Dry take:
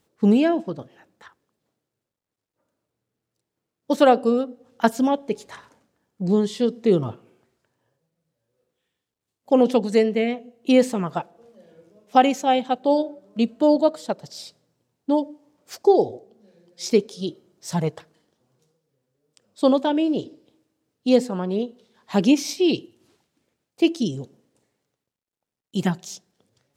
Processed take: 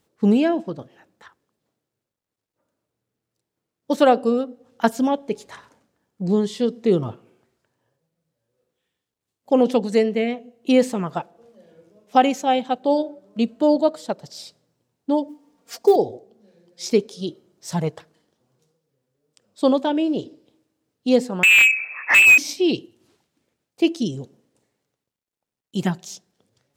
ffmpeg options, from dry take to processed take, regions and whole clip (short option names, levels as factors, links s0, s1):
-filter_complex "[0:a]asettb=1/sr,asplit=3[s0][s1][s2];[s0]atrim=end=15.284[s3];[s1]atrim=start=15.28:end=15.96,asetpts=PTS-STARTPTS,afade=t=in:d=0.004:c=qsin,afade=t=out:st=0.676:d=0.004:c=qsin,aecho=1:1:4.3:0.86,atrim=end_sample=29988,acrusher=bits=8:mode=log:mix=0:aa=0.000001[s4];[s2]atrim=start=15.956[s5];[s3][s4]acrossfade=d=0.004:c1=hsin:c2=qsin[s6];[s6][s5]acrossfade=d=0.004:c1=qsin:c2=hsin,asettb=1/sr,asplit=3[s7][s8][s9];[s7]atrim=end=21.434[s10];[s8]atrim=start=21.43:end=22.38,asetpts=PTS-STARTPTS,afade=t=in:d=0.004:c=qsin,afade=t=out:st=0.946:d=0.004:c=qsin,tiltshelf=f=1300:g=6.5,lowpass=f=2400:t=q:w=0.5098,lowpass=f=2400:t=q:w=0.6013,lowpass=f=2400:t=q:w=0.9,lowpass=f=2400:t=q:w=2.563,afreqshift=-2800,asplit=2[s11][s12];[s12]highpass=f=720:p=1,volume=50.1,asoftclip=type=tanh:threshold=0.891[s13];[s11][s13]amix=inputs=2:normalize=0,lowpass=f=1700:p=1,volume=0.501[s14];[s9]atrim=start=22.376[s15];[s10][s14]acrossfade=d=0.004:c1=hsin:c2=qsin[s16];[s16][s15]acrossfade=d=0.004:c1=qsin:c2=hsin"